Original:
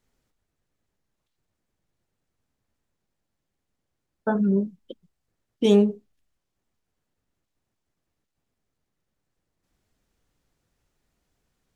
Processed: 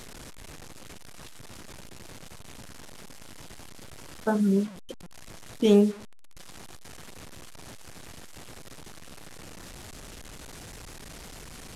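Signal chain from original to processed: one-bit delta coder 64 kbps, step -36 dBFS; trim -1.5 dB

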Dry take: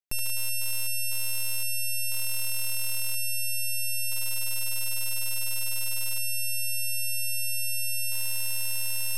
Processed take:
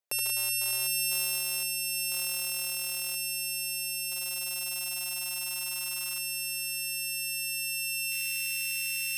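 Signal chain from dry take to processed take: echo that smears into a reverb 718 ms, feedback 42%, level -14 dB; compressor with a negative ratio -25 dBFS, ratio -0.5; high-pass sweep 520 Hz -> 2.2 kHz, 4.31–8.11 s

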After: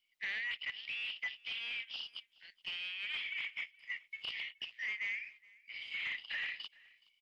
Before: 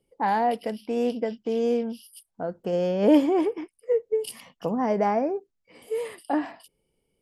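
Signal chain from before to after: octave divider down 2 oct, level +4 dB; steep high-pass 1.9 kHz 96 dB/octave; low-pass that closes with the level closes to 2.8 kHz, closed at -45 dBFS; peaking EQ 3.4 kHz +13.5 dB 2.7 oct; waveshaping leveller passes 1; gain riding within 4 dB 0.5 s; saturation -32 dBFS, distortion -10 dB; distance through air 280 m; on a send: delay 421 ms -24 dB; on the sum: trim +2 dB; SBC 192 kbps 44.1 kHz

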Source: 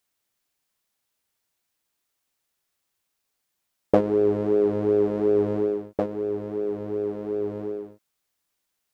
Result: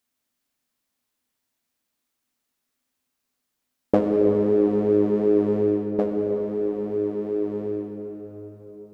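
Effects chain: peaking EQ 250 Hz +13.5 dB 0.3 oct; on a send: reverberation RT60 4.6 s, pre-delay 55 ms, DRR 3.5 dB; on the sum: trim -2 dB

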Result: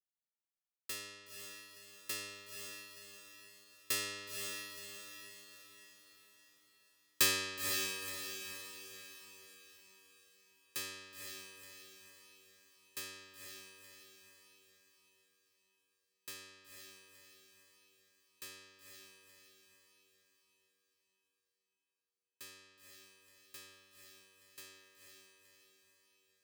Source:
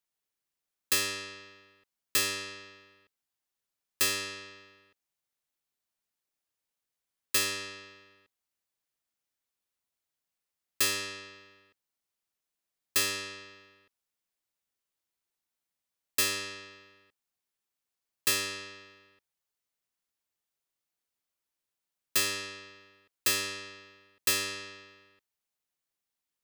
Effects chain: Doppler pass-by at 6.14 s, 9 m/s, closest 1.8 m; echo that smears into a reverb 501 ms, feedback 49%, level -4.5 dB; trim +13 dB

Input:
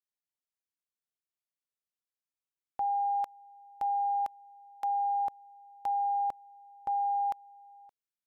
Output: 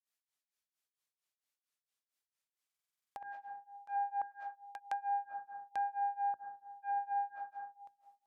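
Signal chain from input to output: self-modulated delay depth 0.095 ms; high-pass 62 Hz; hum notches 60/120/180/240/300/360/420 Hz; reverberation RT60 0.85 s, pre-delay 80 ms, DRR 7.5 dB; granulator 260 ms, grains 4.4 per s, pitch spread up and down by 0 st; low-pass that closes with the level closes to 1.2 kHz, closed at -31 dBFS; buffer glitch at 2.65 s, samples 2048, times 10; tape noise reduction on one side only encoder only; trim -2 dB

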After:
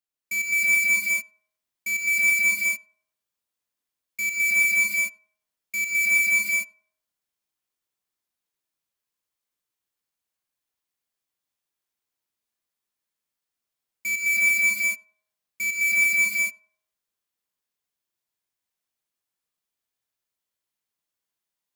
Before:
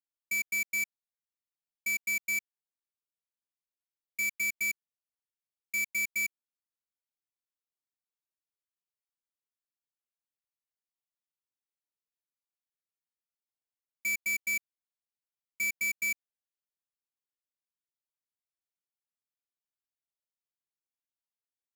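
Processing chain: band-passed feedback delay 98 ms, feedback 41%, band-pass 700 Hz, level -19 dB; gated-style reverb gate 390 ms rising, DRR -5.5 dB; trim +2.5 dB

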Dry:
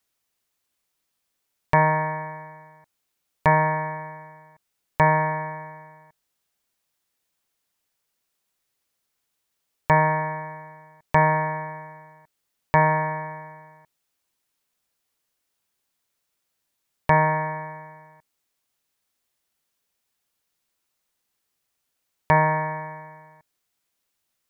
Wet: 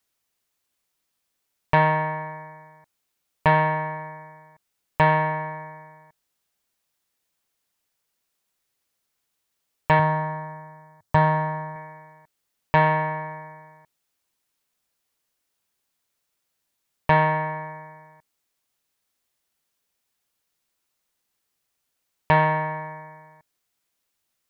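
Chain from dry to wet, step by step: self-modulated delay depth 0.088 ms; 9.99–11.76 s: fifteen-band graphic EQ 100 Hz +10 dB, 400 Hz -4 dB, 2.5 kHz -10 dB

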